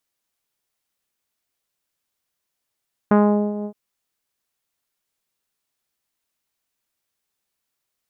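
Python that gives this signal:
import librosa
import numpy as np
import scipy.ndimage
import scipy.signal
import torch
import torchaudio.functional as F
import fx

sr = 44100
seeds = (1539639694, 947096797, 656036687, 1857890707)

y = fx.sub_voice(sr, note=56, wave='saw', cutoff_hz=730.0, q=0.98, env_oct=1.0, env_s=0.29, attack_ms=3.2, decay_s=0.42, sustain_db=-14, release_s=0.08, note_s=0.54, slope=24)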